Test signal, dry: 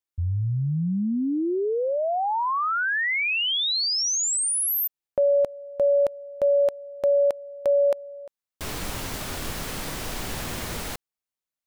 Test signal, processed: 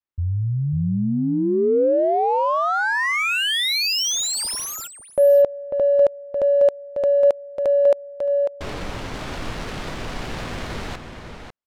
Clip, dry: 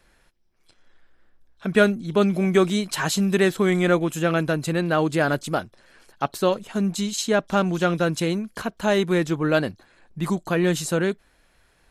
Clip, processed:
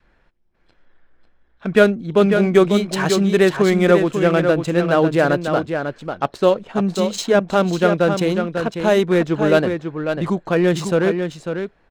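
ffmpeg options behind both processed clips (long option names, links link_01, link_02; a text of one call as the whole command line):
ffmpeg -i in.wav -af "aecho=1:1:546:0.473,adynamicsmooth=sensitivity=4.5:basefreq=2800,adynamicequalizer=threshold=0.0282:dfrequency=500:dqfactor=1.5:tfrequency=500:tqfactor=1.5:attack=5:release=100:ratio=0.375:range=2.5:mode=boostabove:tftype=bell,volume=2.5dB" out.wav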